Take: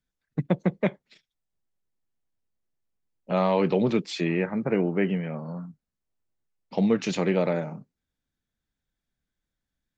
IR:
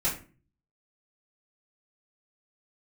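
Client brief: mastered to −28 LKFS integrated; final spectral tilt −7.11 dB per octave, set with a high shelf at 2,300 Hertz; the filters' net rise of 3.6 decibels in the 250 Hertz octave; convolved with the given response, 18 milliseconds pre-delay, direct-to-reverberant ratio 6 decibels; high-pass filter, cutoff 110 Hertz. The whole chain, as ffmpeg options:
-filter_complex "[0:a]highpass=110,equalizer=frequency=250:width_type=o:gain=5.5,highshelf=frequency=2300:gain=-3,asplit=2[link_01][link_02];[1:a]atrim=start_sample=2205,adelay=18[link_03];[link_02][link_03]afir=irnorm=-1:irlink=0,volume=-14dB[link_04];[link_01][link_04]amix=inputs=2:normalize=0,volume=-6dB"

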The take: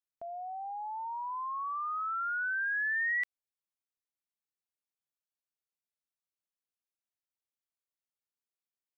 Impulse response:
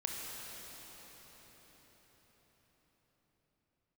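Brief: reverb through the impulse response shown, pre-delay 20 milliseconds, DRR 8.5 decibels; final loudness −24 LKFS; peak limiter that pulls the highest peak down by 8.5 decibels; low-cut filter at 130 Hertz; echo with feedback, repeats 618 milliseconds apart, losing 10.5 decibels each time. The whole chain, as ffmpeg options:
-filter_complex "[0:a]highpass=130,alimiter=level_in=11.5dB:limit=-24dB:level=0:latency=1,volume=-11.5dB,aecho=1:1:618|1236|1854:0.299|0.0896|0.0269,asplit=2[link_01][link_02];[1:a]atrim=start_sample=2205,adelay=20[link_03];[link_02][link_03]afir=irnorm=-1:irlink=0,volume=-11dB[link_04];[link_01][link_04]amix=inputs=2:normalize=0,volume=14dB"

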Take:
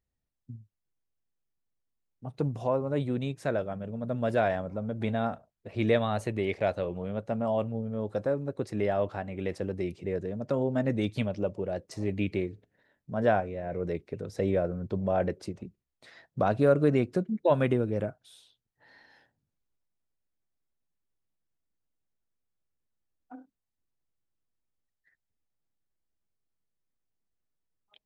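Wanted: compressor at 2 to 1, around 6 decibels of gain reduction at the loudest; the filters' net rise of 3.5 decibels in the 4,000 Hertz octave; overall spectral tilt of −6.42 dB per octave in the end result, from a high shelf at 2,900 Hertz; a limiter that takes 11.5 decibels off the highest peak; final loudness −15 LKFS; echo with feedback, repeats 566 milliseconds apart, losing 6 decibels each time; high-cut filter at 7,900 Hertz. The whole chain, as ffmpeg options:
ffmpeg -i in.wav -af "lowpass=7900,highshelf=frequency=2900:gain=-3.5,equalizer=frequency=4000:width_type=o:gain=7,acompressor=threshold=-29dB:ratio=2,alimiter=level_in=4dB:limit=-24dB:level=0:latency=1,volume=-4dB,aecho=1:1:566|1132|1698|2264|2830|3396:0.501|0.251|0.125|0.0626|0.0313|0.0157,volume=22.5dB" out.wav

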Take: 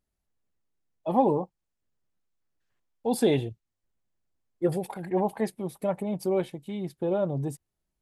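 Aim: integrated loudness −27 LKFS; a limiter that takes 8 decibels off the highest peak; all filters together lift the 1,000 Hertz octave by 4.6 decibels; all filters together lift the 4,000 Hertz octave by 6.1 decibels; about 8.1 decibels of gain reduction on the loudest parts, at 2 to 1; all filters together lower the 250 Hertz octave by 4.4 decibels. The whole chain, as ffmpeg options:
ffmpeg -i in.wav -af "equalizer=frequency=250:width_type=o:gain=-7,equalizer=frequency=1000:width_type=o:gain=6.5,equalizer=frequency=4000:width_type=o:gain=7,acompressor=threshold=-30dB:ratio=2,volume=10dB,alimiter=limit=-15.5dB:level=0:latency=1" out.wav

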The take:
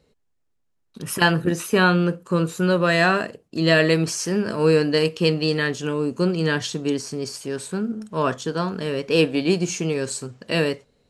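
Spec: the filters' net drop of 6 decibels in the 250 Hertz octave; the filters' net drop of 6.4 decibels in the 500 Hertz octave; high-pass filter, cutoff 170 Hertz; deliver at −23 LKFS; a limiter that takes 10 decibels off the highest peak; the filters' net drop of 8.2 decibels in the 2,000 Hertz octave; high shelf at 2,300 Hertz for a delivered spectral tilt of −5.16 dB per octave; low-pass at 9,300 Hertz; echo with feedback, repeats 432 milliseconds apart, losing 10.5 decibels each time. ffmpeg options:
ffmpeg -i in.wav -af "highpass=170,lowpass=9300,equalizer=frequency=250:width_type=o:gain=-5,equalizer=frequency=500:width_type=o:gain=-5.5,equalizer=frequency=2000:width_type=o:gain=-8,highshelf=frequency=2300:gain=-5.5,alimiter=limit=-18dB:level=0:latency=1,aecho=1:1:432|864|1296:0.299|0.0896|0.0269,volume=6.5dB" out.wav

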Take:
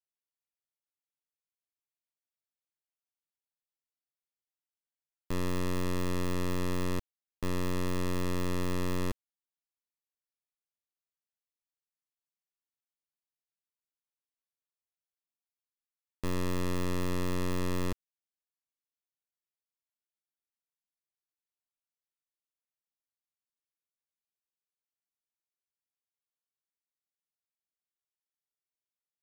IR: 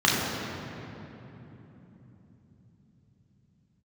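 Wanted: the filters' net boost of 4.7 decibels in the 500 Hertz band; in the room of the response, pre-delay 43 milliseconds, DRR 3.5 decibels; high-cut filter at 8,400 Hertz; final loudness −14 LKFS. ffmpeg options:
-filter_complex "[0:a]lowpass=8400,equalizer=frequency=500:width_type=o:gain=6,asplit=2[link_01][link_02];[1:a]atrim=start_sample=2205,adelay=43[link_03];[link_02][link_03]afir=irnorm=-1:irlink=0,volume=-22dB[link_04];[link_01][link_04]amix=inputs=2:normalize=0,volume=17dB"

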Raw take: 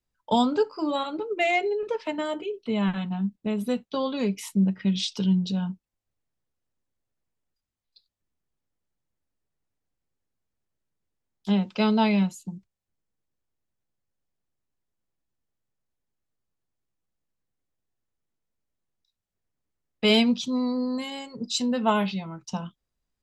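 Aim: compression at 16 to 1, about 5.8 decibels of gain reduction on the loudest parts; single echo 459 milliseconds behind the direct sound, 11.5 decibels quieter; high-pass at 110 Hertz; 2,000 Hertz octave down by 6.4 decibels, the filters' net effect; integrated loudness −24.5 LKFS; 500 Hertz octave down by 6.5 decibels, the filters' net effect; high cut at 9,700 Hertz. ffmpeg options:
ffmpeg -i in.wav -af "highpass=110,lowpass=9700,equalizer=frequency=500:width_type=o:gain=-8,equalizer=frequency=2000:width_type=o:gain=-7.5,acompressor=threshold=-25dB:ratio=16,aecho=1:1:459:0.266,volume=7.5dB" out.wav

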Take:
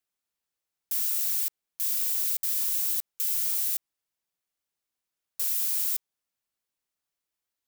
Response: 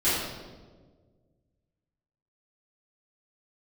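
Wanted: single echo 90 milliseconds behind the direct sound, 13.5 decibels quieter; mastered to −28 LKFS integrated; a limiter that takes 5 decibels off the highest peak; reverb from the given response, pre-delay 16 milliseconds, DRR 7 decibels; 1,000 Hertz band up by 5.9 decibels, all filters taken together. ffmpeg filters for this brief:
-filter_complex "[0:a]equalizer=frequency=1000:width_type=o:gain=7.5,alimiter=limit=-18.5dB:level=0:latency=1,aecho=1:1:90:0.211,asplit=2[link_01][link_02];[1:a]atrim=start_sample=2205,adelay=16[link_03];[link_02][link_03]afir=irnorm=-1:irlink=0,volume=-20.5dB[link_04];[link_01][link_04]amix=inputs=2:normalize=0,volume=-1.5dB"

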